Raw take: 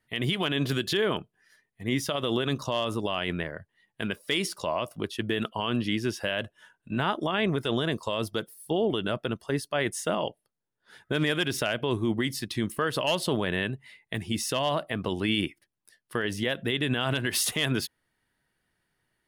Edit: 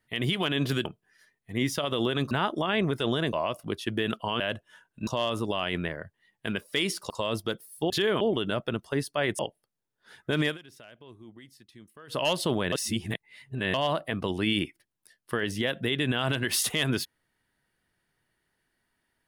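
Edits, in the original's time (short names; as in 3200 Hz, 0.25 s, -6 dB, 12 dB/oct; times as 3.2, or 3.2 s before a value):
0.85–1.16 move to 8.78
2.62–4.65 swap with 6.96–7.98
5.72–6.29 cut
9.96–10.21 cut
11.28–13.01 dip -22 dB, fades 0.12 s
13.54–14.56 reverse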